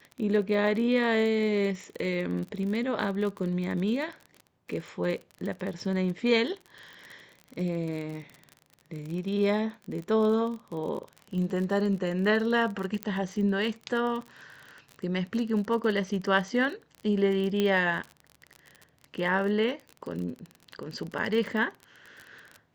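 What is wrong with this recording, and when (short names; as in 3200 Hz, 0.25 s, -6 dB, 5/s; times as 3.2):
crackle 36/s -34 dBFS
13.03 pop -15 dBFS
17.6 pop -14 dBFS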